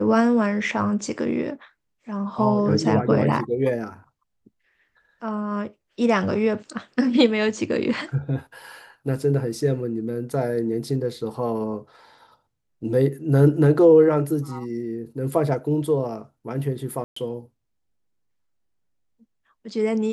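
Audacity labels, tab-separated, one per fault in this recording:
17.040000	17.160000	dropout 124 ms

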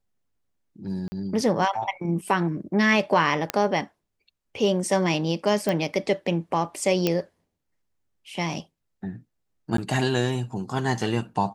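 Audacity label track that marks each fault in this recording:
1.080000	1.120000	dropout 40 ms
3.500000	3.500000	pop -8 dBFS
5.690000	5.690000	pop
7.070000	7.070000	pop -8 dBFS
9.770000	9.780000	dropout

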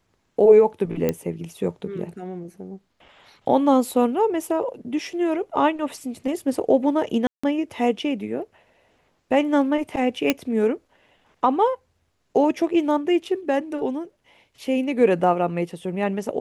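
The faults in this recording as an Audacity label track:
1.090000	1.090000	pop -9 dBFS
7.270000	7.430000	dropout 165 ms
10.300000	10.300000	pop -4 dBFS

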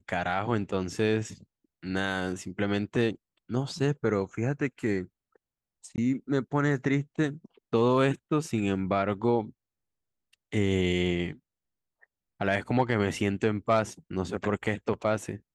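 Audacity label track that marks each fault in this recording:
5.960000	5.980000	dropout 19 ms

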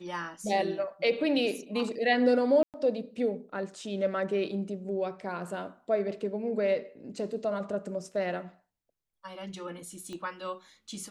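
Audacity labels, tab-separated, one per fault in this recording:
2.630000	2.740000	dropout 108 ms
10.130000	10.130000	pop -29 dBFS

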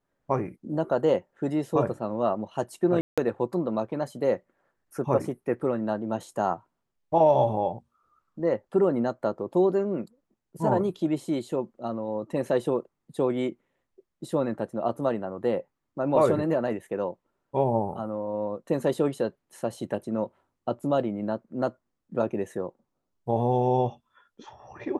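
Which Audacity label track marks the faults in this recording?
3.010000	3.180000	dropout 166 ms

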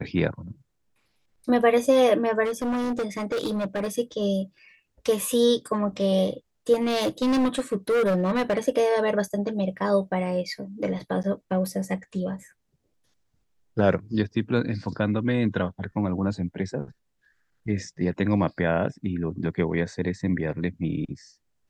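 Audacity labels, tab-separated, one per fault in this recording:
2.440000	3.910000	clipped -23.5 dBFS
6.730000	8.590000	clipped -19 dBFS
11.230000	11.240000	dropout 8.6 ms

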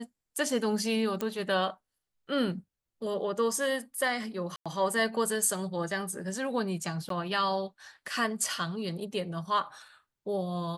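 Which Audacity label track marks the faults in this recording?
1.210000	1.210000	pop -17 dBFS
4.560000	4.660000	dropout 96 ms
7.090000	7.100000	dropout 13 ms

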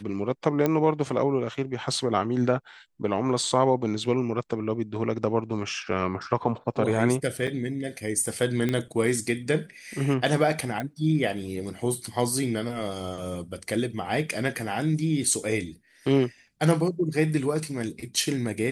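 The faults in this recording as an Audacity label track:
0.660000	0.660000	pop -11 dBFS
7.470000	7.480000	dropout 5.9 ms
8.690000	8.690000	pop -14 dBFS
10.800000	10.800000	pop -17 dBFS

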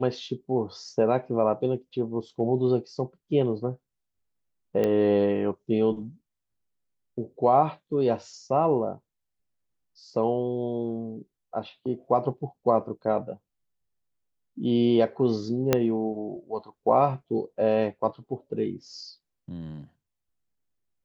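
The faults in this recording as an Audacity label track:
4.840000	4.840000	pop -15 dBFS
15.730000	15.730000	pop -6 dBFS

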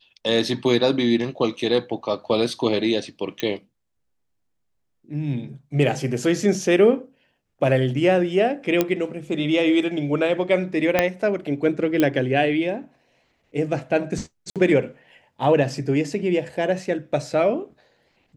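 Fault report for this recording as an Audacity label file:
3.400000	3.400000	pop -11 dBFS
8.810000	8.810000	pop -5 dBFS
10.990000	10.990000	pop -3 dBFS
12.000000	12.000000	pop -7 dBFS
14.500000	14.560000	dropout 57 ms

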